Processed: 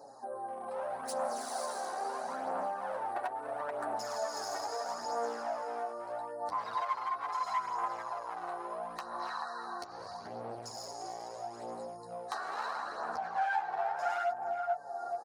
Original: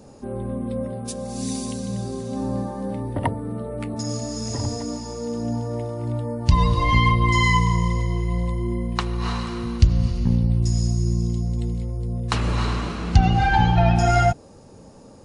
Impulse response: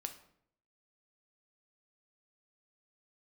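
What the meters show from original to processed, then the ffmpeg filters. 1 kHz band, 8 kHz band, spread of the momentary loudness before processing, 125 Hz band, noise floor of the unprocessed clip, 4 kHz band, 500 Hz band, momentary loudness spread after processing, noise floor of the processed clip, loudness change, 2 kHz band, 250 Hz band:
−7.5 dB, −12.0 dB, 12 LU, below −40 dB, −46 dBFS, −15.5 dB, −8.0 dB, 9 LU, −46 dBFS, −14.0 dB, −13.0 dB, −26.5 dB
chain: -filter_complex "[0:a]asplit=2[link_01][link_02];[link_02]adelay=433,lowpass=frequency=930:poles=1,volume=-7.5dB,asplit=2[link_03][link_04];[link_04]adelay=433,lowpass=frequency=930:poles=1,volume=0.3,asplit=2[link_05][link_06];[link_06]adelay=433,lowpass=frequency=930:poles=1,volume=0.3,asplit=2[link_07][link_08];[link_08]adelay=433,lowpass=frequency=930:poles=1,volume=0.3[link_09];[link_01][link_03][link_05][link_07][link_09]amix=inputs=5:normalize=0,aeval=exprs='val(0)+0.01*(sin(2*PI*60*n/s)+sin(2*PI*2*60*n/s)/2+sin(2*PI*3*60*n/s)/3+sin(2*PI*4*60*n/s)/4+sin(2*PI*5*60*n/s)/5)':channel_layout=same,dynaudnorm=framelen=160:gausssize=11:maxgain=13dB,equalizer=frequency=6800:width=1.7:gain=-4.5,alimiter=limit=-7.5dB:level=0:latency=1:release=264,afftfilt=real='re*(1-between(b*sr/4096,1900,3800))':imag='im*(1-between(b*sr/4096,1900,3800))':win_size=4096:overlap=0.75,volume=18dB,asoftclip=hard,volume=-18dB,highpass=frequency=730:width_type=q:width=3.5,adynamicequalizer=threshold=0.0112:dfrequency=1500:dqfactor=2.3:tfrequency=1500:tqfactor=2.3:attack=5:release=100:ratio=0.375:range=3.5:mode=boostabove:tftype=bell,flanger=delay=6.7:depth=7.2:regen=-3:speed=0.27:shape=triangular,acompressor=threshold=-39dB:ratio=2,flanger=delay=0.1:depth=2.6:regen=33:speed=0.76:shape=sinusoidal,volume=1.5dB"

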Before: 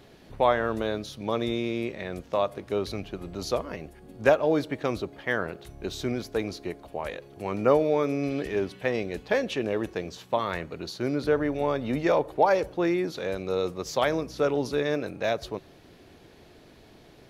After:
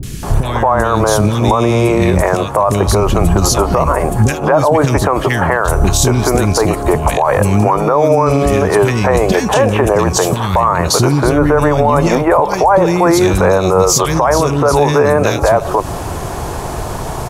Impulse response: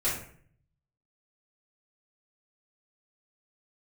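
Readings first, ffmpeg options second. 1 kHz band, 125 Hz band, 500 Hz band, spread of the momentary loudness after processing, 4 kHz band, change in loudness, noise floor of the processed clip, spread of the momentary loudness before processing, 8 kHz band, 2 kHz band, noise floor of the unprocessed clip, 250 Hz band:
+18.0 dB, +23.5 dB, +14.0 dB, 4 LU, +15.5 dB, +15.5 dB, −22 dBFS, 13 LU, +27.5 dB, +14.0 dB, −53 dBFS, +15.5 dB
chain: -filter_complex "[0:a]lowshelf=frequency=130:gain=5.5,acompressor=threshold=-32dB:ratio=6,equalizer=frequency=250:width_type=o:width=1:gain=-6,equalizer=frequency=500:width_type=o:width=1:gain=-3,equalizer=frequency=1000:width_type=o:width=1:gain=10,equalizer=frequency=2000:width_type=o:width=1:gain=-5,equalizer=frequency=4000:width_type=o:width=1:gain=-11,equalizer=frequency=8000:width_type=o:width=1:gain=9,acrossover=split=290|2200[link_01][link_02][link_03];[link_03]adelay=30[link_04];[link_02]adelay=230[link_05];[link_01][link_05][link_04]amix=inputs=3:normalize=0,alimiter=level_in=33dB:limit=-1dB:release=50:level=0:latency=1,volume=-1dB"

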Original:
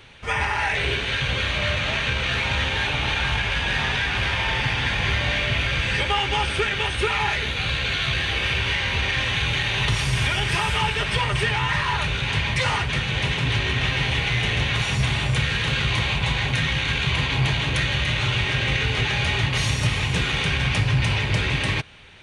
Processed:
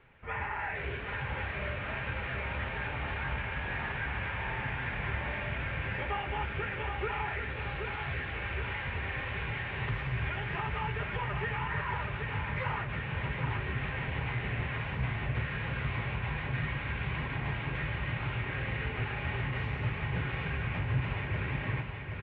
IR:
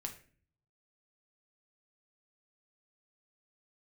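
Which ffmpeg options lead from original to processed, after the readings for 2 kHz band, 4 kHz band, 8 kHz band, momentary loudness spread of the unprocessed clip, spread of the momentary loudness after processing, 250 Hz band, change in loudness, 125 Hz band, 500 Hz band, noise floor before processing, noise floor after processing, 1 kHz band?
−12.0 dB, −22.5 dB, below −40 dB, 1 LU, 2 LU, −10.0 dB, −12.5 dB, −10.0 dB, −10.0 dB, −26 dBFS, −38 dBFS, −10.0 dB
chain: -af "lowpass=frequency=2200:width=0.5412,lowpass=frequency=2200:width=1.3066,flanger=delay=4.1:depth=9.9:regen=-53:speed=1.8:shape=triangular,aecho=1:1:775|1550|2325|3100|3875|4650:0.501|0.256|0.13|0.0665|0.0339|0.0173,volume=-7dB"

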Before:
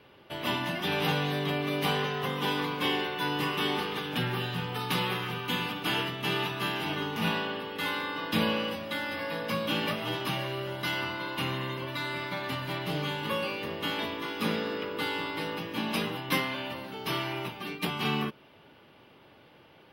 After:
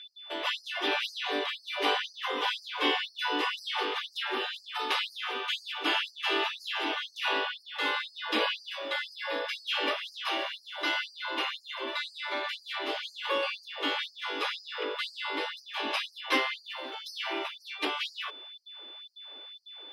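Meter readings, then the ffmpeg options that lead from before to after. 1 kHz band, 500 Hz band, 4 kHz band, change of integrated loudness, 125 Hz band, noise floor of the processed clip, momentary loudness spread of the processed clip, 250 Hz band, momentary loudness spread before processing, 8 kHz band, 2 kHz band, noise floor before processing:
−0.5 dB, −2.5 dB, +2.0 dB, −0.5 dB, below −40 dB, −57 dBFS, 9 LU, −8.0 dB, 5 LU, −3.5 dB, +1.0 dB, −57 dBFS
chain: -af "aeval=exprs='val(0)+0.00501*sin(2*PI*3500*n/s)':channel_layout=same,lowpass=6100,afftfilt=real='re*gte(b*sr/1024,250*pow(4400/250,0.5+0.5*sin(2*PI*2*pts/sr)))':imag='im*gte(b*sr/1024,250*pow(4400/250,0.5+0.5*sin(2*PI*2*pts/sr)))':win_size=1024:overlap=0.75,volume=2.5dB"

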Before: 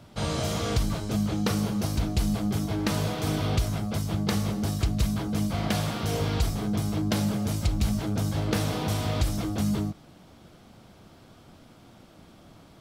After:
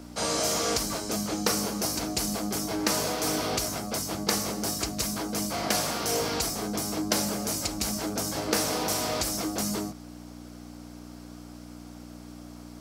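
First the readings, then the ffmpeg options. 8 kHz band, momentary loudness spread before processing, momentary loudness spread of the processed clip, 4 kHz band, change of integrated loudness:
+10.0 dB, 2 LU, 19 LU, +5.0 dB, 0.0 dB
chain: -filter_complex "[0:a]aexciter=amount=7.3:drive=7.8:freq=5100,aeval=exprs='val(0)+0.0251*(sin(2*PI*60*n/s)+sin(2*PI*2*60*n/s)/2+sin(2*PI*3*60*n/s)/3+sin(2*PI*4*60*n/s)/4+sin(2*PI*5*60*n/s)/5)':channel_layout=same,acrossover=split=260 4400:gain=0.1 1 0.141[link_01][link_02][link_03];[link_01][link_02][link_03]amix=inputs=3:normalize=0,volume=3dB"

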